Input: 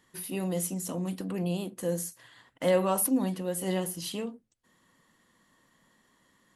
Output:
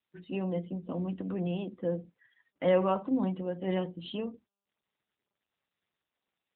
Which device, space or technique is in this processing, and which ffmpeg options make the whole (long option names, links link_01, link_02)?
mobile call with aggressive noise cancelling: -filter_complex "[0:a]asettb=1/sr,asplit=3[link_01][link_02][link_03];[link_01]atrim=end=2.084[link_04];[link_02]atrim=start=2.08:end=3.6,asetpts=PTS-STARTPTS,afade=type=in:duration=0.004:curve=qsin,afade=type=out:start_time=1.516:duration=0.004:curve=qsin,lowpass=frequency=7400:width=0.5412,lowpass=frequency=7400:width=1.3066[link_05];[link_03]atrim=start=3.596[link_06];[link_04][link_05]acrossfade=duration=0.004:curve1=hsin:curve2=qsin[link_07];[link_07][link_06]acrossfade=duration=0.004:curve1=qsin:curve2=hsin,highpass=110,afftdn=noise_reduction=35:noise_floor=-46" -ar 8000 -c:a libopencore_amrnb -b:a 10200